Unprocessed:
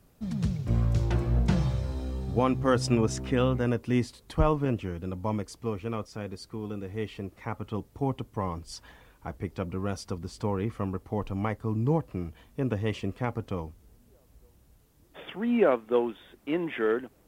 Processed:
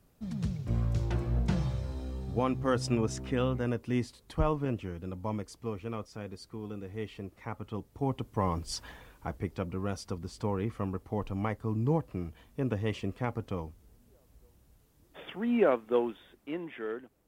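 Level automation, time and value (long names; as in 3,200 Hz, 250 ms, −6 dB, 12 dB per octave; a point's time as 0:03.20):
0:07.86 −4.5 dB
0:08.73 +5 dB
0:09.69 −2.5 dB
0:16.10 −2.5 dB
0:16.76 −10.5 dB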